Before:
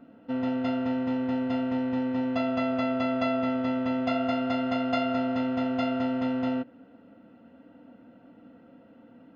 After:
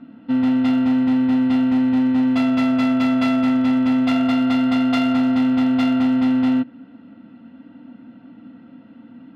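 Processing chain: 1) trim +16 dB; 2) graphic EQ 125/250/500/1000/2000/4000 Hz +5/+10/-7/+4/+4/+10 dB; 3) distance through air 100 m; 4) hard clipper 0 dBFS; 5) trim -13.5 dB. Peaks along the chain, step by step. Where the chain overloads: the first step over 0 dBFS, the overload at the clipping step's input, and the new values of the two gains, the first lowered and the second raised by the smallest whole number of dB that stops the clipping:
+2.0 dBFS, +7.5 dBFS, +7.0 dBFS, 0.0 dBFS, -13.5 dBFS; step 1, 7.0 dB; step 1 +9 dB, step 5 -6.5 dB

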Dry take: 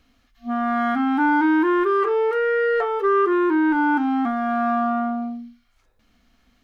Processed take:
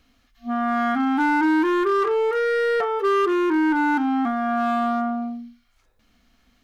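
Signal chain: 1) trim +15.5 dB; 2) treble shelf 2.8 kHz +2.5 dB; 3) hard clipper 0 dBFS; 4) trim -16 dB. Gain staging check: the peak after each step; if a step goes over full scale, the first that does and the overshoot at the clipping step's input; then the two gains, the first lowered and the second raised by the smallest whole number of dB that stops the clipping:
+5.0 dBFS, +5.0 dBFS, 0.0 dBFS, -16.0 dBFS; step 1, 5.0 dB; step 1 +10.5 dB, step 4 -11 dB

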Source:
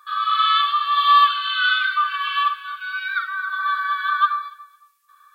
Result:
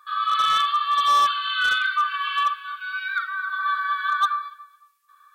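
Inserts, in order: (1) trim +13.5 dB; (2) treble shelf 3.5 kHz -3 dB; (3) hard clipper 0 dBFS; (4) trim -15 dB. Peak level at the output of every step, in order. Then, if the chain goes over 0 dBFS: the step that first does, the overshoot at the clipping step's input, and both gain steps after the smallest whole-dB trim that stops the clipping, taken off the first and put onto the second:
+9.0 dBFS, +8.5 dBFS, 0.0 dBFS, -15.0 dBFS; step 1, 8.5 dB; step 1 +4.5 dB, step 4 -6 dB

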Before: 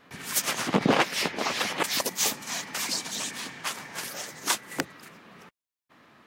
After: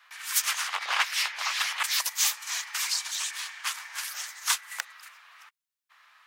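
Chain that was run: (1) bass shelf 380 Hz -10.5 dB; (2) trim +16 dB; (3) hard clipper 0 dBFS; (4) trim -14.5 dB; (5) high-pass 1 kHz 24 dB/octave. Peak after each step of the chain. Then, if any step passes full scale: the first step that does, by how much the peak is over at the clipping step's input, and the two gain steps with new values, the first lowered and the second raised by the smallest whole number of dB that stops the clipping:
-9.5 dBFS, +6.5 dBFS, 0.0 dBFS, -14.5 dBFS, -9.5 dBFS; step 2, 6.5 dB; step 2 +9 dB, step 4 -7.5 dB

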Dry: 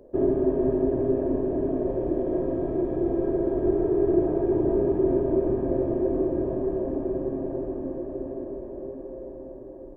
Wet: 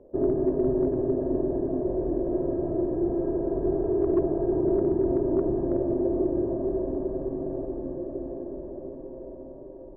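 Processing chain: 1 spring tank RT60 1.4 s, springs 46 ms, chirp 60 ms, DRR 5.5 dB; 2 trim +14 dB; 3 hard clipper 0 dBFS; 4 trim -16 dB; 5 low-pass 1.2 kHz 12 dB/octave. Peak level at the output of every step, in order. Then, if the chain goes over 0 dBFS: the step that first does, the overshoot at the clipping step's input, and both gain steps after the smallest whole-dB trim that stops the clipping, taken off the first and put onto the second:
-10.5 dBFS, +3.5 dBFS, 0.0 dBFS, -16.0 dBFS, -15.5 dBFS; step 2, 3.5 dB; step 2 +10 dB, step 4 -12 dB

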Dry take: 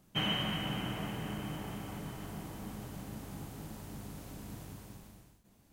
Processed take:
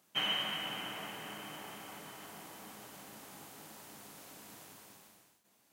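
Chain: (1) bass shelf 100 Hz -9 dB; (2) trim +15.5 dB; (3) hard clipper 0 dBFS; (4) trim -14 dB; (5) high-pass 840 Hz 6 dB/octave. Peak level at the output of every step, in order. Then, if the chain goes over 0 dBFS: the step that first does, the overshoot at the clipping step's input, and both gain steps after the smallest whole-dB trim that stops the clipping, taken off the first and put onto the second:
-20.5 dBFS, -5.0 dBFS, -5.0 dBFS, -19.0 dBFS, -21.5 dBFS; nothing clips

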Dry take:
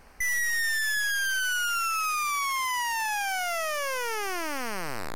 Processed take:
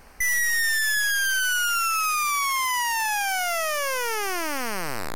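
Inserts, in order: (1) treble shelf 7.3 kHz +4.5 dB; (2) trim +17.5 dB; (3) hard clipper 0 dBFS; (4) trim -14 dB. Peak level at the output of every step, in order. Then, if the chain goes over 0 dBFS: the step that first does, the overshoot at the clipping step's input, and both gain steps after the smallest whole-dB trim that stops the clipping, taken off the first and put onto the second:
-19.0 dBFS, -1.5 dBFS, -1.5 dBFS, -15.5 dBFS; nothing clips

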